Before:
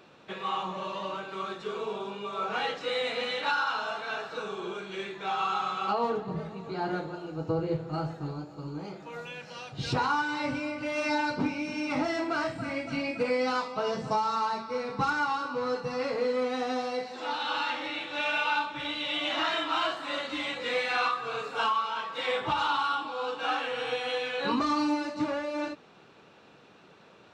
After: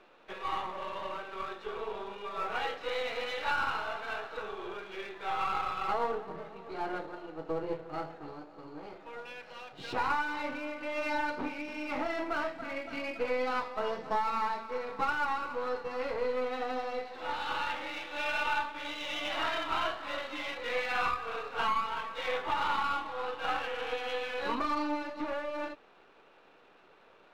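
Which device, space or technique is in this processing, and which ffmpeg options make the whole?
crystal radio: -af "highpass=360,lowpass=3000,aeval=exprs='if(lt(val(0),0),0.447*val(0),val(0))':c=same"

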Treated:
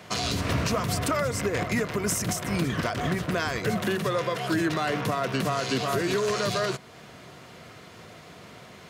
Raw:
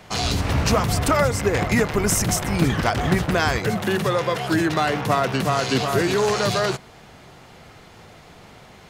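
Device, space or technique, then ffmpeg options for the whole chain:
PA system with an anti-feedback notch: -af "highpass=100,asuperstop=centerf=830:order=4:qfactor=6.6,alimiter=limit=0.15:level=0:latency=1:release=350"

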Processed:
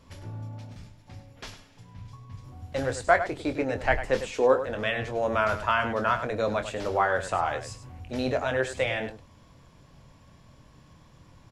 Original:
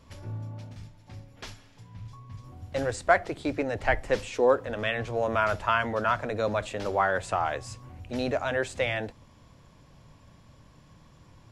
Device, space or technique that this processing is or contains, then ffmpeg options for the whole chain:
slapback doubling: -filter_complex "[0:a]asplit=3[s0][s1][s2];[s1]adelay=23,volume=0.355[s3];[s2]adelay=101,volume=0.282[s4];[s0][s3][s4]amix=inputs=3:normalize=0"

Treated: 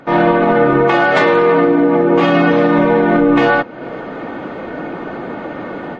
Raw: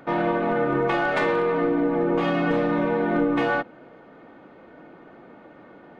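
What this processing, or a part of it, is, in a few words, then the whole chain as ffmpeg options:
low-bitrate web radio: -filter_complex "[0:a]asettb=1/sr,asplit=3[s0][s1][s2];[s0]atrim=end=0.844[s3];[s1]atrim=start=0.84:end=2.77,asetpts=PTS-STARTPTS,afade=t=in:d=0.004:c=qsin,afade=t=out:st=1.926:d=0.004:c=qsin,highpass=f=95:p=1[s4];[s2]atrim=start=2.766[s5];[s3][s4]acrossfade=d=0.004:c1=hsin:c2=qsin[s6];[s6][s5]acrossfade=d=0.004:c1=qsin:c2=hsin,dynaudnorm=f=110:g=3:m=5.62,alimiter=limit=0.316:level=0:latency=1:release=345,volume=2.24" -ar 24000 -c:a libmp3lame -b:a 32k

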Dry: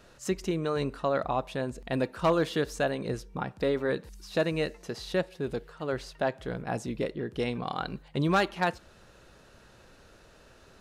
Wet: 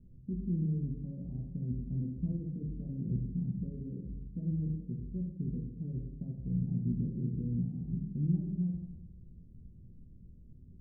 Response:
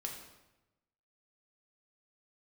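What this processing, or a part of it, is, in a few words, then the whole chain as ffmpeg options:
club heard from the street: -filter_complex "[0:a]alimiter=level_in=1.26:limit=0.0631:level=0:latency=1:release=65,volume=0.794,lowpass=f=210:w=0.5412,lowpass=f=210:w=1.3066[s0];[1:a]atrim=start_sample=2205[s1];[s0][s1]afir=irnorm=-1:irlink=0,volume=2.51"

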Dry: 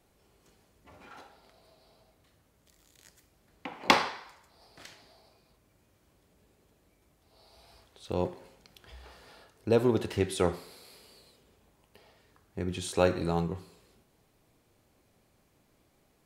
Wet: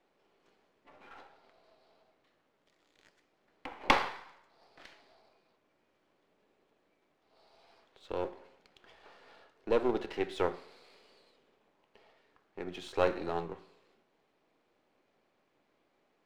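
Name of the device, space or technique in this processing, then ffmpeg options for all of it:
crystal radio: -af "highpass=300,lowpass=3300,aeval=exprs='if(lt(val(0),0),0.447*val(0),val(0))':c=same"

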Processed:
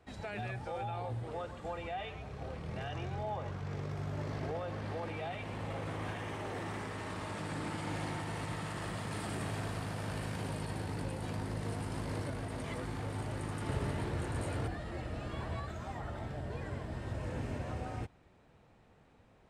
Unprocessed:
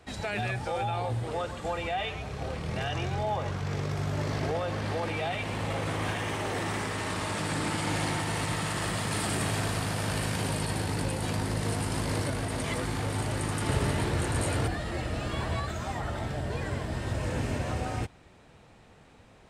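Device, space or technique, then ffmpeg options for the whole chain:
behind a face mask: -af "highshelf=f=2700:g=-8,volume=0.422"

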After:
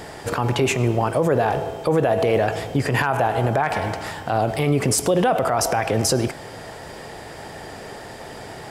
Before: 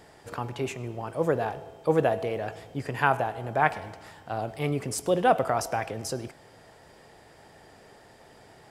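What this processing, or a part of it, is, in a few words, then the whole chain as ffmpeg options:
loud club master: -af "acompressor=threshold=0.0316:ratio=1.5,asoftclip=type=hard:threshold=0.224,alimiter=level_in=17.8:limit=0.891:release=50:level=0:latency=1,volume=0.376"

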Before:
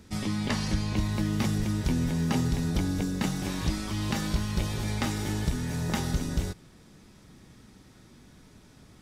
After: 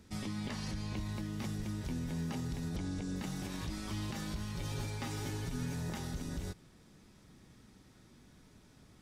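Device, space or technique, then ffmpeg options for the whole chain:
clipper into limiter: -filter_complex "[0:a]asettb=1/sr,asplit=3[s0][s1][s2];[s0]atrim=end=2.764[s3];[s1]atrim=start=2.76:end=3.16,asetpts=PTS-STARTPTS,afade=t=in:d=0.004:c=qsin,afade=t=out:st=0.396:d=0.004:c=qsin,lowpass=f=9400:w=0.5412,lowpass=f=9400:w=1.3066[s4];[s2]atrim=start=3.156[s5];[s3][s4]acrossfade=d=0.004:c1=hsin:c2=qsin[s6];[s6][s5]acrossfade=d=0.004:c1=qsin:c2=hsin,asoftclip=type=hard:threshold=0.15,alimiter=limit=0.0631:level=0:latency=1:release=90,asettb=1/sr,asplit=3[s7][s8][s9];[s7]atrim=end=4.544[s10];[s8]atrim=start=4.54:end=5.74,asetpts=PTS-STARTPTS,afade=t=in:d=0.004:c=qsin,afade=t=out:st=1.196:d=0.004:c=qsin,aecho=1:1:7.3:0.66,atrim=end_sample=52920[s11];[s9]atrim=start=5.736[s12];[s10][s11]acrossfade=d=0.004:c1=hsin:c2=qsin[s13];[s13][s12]acrossfade=d=0.004:c1=qsin:c2=hsin,volume=0.473"

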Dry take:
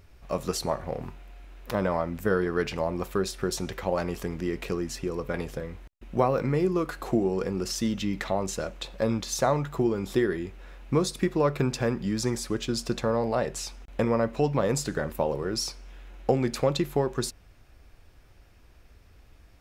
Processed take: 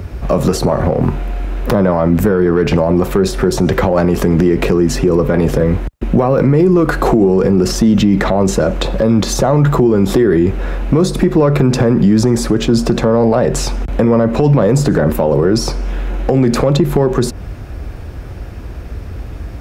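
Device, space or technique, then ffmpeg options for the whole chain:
mastering chain: -filter_complex "[0:a]highpass=45,equalizer=f=1500:t=o:w=0.77:g=2.5,acrossover=split=110|1400[s0][s1][s2];[s0]acompressor=threshold=0.00398:ratio=4[s3];[s1]acompressor=threshold=0.0631:ratio=4[s4];[s2]acompressor=threshold=0.0141:ratio=4[s5];[s3][s4][s5]amix=inputs=3:normalize=0,acompressor=threshold=0.0251:ratio=2,asoftclip=type=tanh:threshold=0.0841,tiltshelf=f=870:g=7,asoftclip=type=hard:threshold=0.106,alimiter=level_in=22.4:limit=0.891:release=50:level=0:latency=1,volume=0.75"

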